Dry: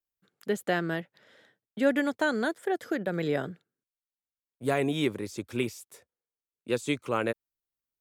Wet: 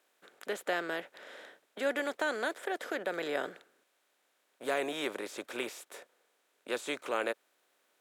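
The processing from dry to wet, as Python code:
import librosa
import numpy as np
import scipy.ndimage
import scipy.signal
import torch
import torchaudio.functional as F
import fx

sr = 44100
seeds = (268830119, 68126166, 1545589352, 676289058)

y = fx.bin_compress(x, sr, power=0.6)
y = scipy.signal.sosfilt(scipy.signal.butter(2, 450.0, 'highpass', fs=sr, output='sos'), y)
y = F.gain(torch.from_numpy(y), -6.0).numpy()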